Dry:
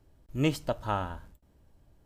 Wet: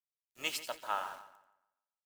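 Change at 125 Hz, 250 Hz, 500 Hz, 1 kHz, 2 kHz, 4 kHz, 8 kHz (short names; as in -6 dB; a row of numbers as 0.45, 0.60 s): under -30 dB, -24.0 dB, -12.0 dB, -3.5 dB, -0.5 dB, +1.5 dB, +3.5 dB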